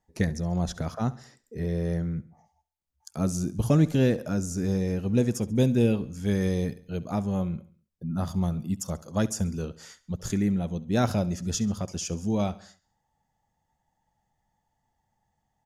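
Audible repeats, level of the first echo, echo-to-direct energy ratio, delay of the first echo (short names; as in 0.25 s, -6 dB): 3, -19.0 dB, -18.0 dB, 68 ms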